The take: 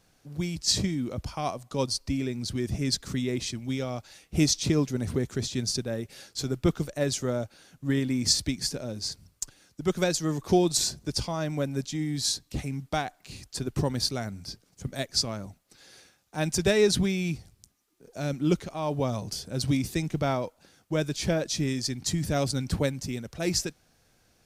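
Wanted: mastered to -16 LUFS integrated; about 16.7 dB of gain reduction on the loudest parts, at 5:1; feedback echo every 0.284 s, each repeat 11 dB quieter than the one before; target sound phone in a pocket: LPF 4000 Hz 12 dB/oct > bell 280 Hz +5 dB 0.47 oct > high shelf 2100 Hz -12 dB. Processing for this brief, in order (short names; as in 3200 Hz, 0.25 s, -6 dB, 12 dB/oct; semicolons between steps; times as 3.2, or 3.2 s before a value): compressor 5:1, threshold -37 dBFS; LPF 4000 Hz 12 dB/oct; bell 280 Hz +5 dB 0.47 oct; high shelf 2100 Hz -12 dB; feedback echo 0.284 s, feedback 28%, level -11 dB; gain +24.5 dB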